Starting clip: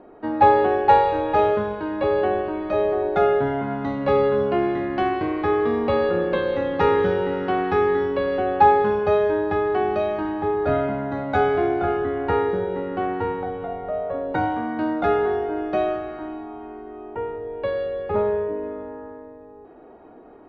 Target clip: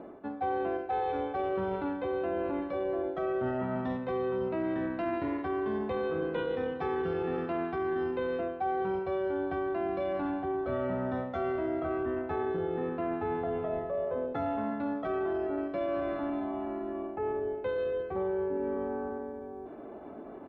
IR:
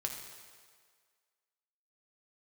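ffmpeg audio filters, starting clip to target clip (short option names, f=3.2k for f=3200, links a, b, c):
-af "highpass=f=56:p=1,areverse,acompressor=threshold=-31dB:ratio=10,areverse,asetrate=40440,aresample=44100,atempo=1.09051,volume=2dB"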